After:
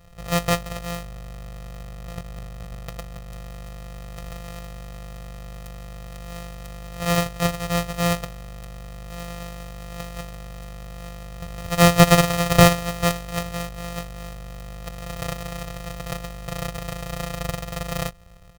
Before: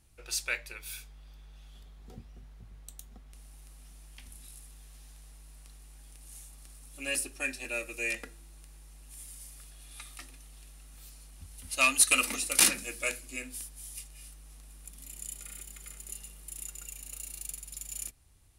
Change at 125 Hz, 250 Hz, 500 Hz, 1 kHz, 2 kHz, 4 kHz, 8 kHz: +27.0, +21.5, +19.5, +16.5, +4.5, +8.0, −1.0 decibels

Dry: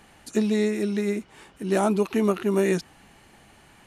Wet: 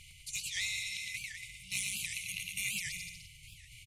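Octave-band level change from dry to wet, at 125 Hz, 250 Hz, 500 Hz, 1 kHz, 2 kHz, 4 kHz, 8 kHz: −20.0 dB, −35.0 dB, below −40 dB, below −40 dB, −1.0 dB, +3.5 dB, +4.0 dB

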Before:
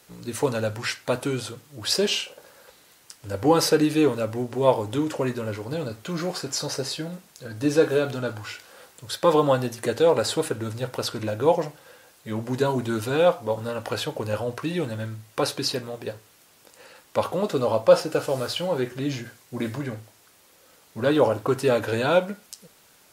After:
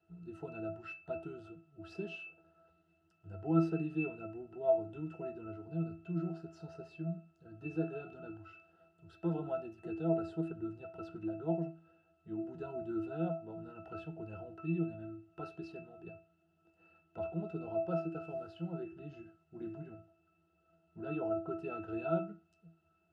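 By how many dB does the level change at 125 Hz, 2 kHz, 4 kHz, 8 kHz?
−11.0 dB, −18.5 dB, below −30 dB, below −40 dB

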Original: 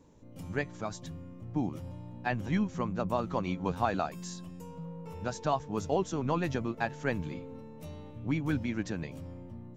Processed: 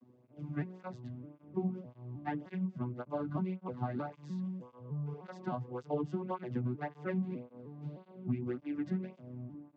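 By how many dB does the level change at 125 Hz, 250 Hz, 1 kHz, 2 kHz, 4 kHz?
−3.0 dB, −3.5 dB, −9.0 dB, −12.0 dB, below −15 dB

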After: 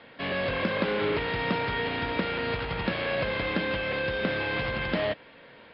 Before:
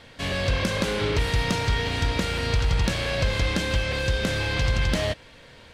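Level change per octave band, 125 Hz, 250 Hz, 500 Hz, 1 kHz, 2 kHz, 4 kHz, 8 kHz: −11.0 dB, −2.0 dB, 0.0 dB, 0.0 dB, −1.0 dB, −6.0 dB, below −40 dB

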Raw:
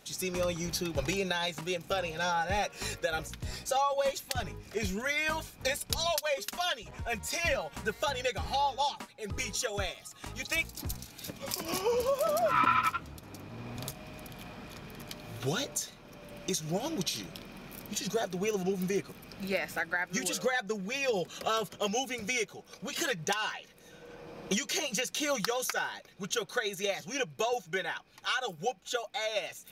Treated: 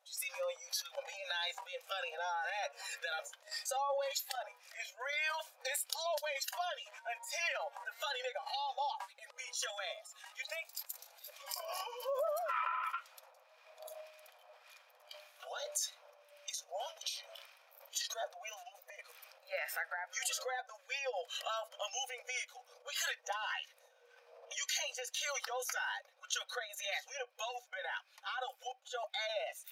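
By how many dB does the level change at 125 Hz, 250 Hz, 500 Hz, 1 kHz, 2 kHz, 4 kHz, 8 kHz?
below −40 dB, below −40 dB, −9.5 dB, −7.5 dB, −6.5 dB, −5.5 dB, −5.0 dB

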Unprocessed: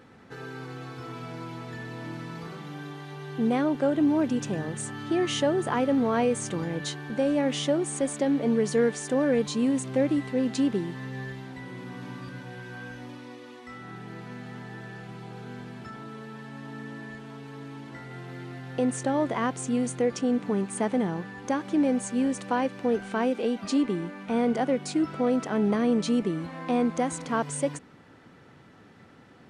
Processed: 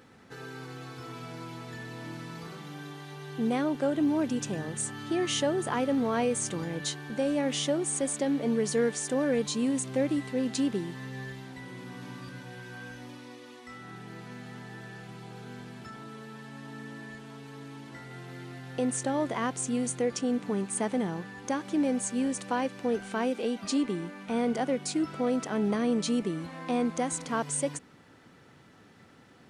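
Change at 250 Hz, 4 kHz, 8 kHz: −3.5, 0.0, +3.5 decibels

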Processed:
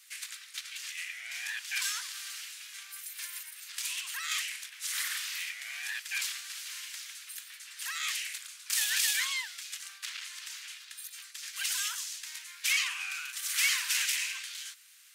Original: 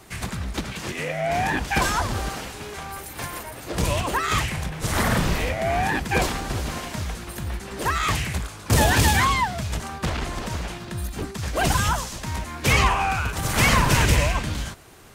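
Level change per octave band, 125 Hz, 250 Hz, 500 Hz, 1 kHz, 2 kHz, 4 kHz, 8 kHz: below −40 dB, below −40 dB, below −40 dB, −25.5 dB, −8.5 dB, −4.0 dB, −3.0 dB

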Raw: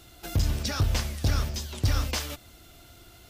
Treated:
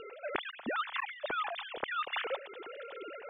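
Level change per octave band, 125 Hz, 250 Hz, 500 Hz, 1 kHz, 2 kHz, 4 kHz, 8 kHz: below −35 dB, −11.0 dB, +1.0 dB, +3.5 dB, +2.0 dB, −7.5 dB, below −40 dB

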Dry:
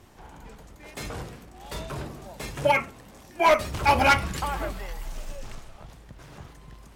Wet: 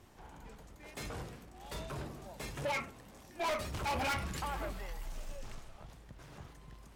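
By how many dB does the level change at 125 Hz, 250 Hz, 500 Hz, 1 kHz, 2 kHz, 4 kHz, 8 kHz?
−9.0, −10.5, −14.0, −14.5, −13.5, −10.5, −8.0 decibels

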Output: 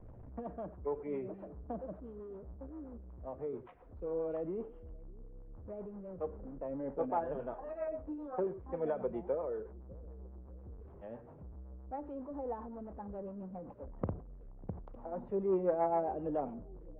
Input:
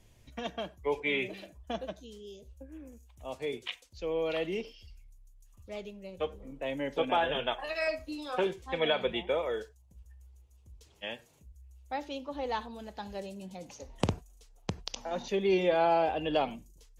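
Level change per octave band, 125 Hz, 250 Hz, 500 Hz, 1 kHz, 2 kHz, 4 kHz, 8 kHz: −3.5 dB, −3.5 dB, −5.0 dB, −7.0 dB, −22.0 dB, below −40 dB, can't be measured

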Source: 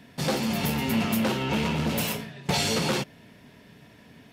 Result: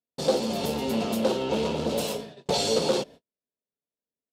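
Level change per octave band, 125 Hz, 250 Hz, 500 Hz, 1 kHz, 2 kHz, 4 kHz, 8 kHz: −7.5, −2.5, +6.0, −0.5, −8.0, −1.0, −1.5 decibels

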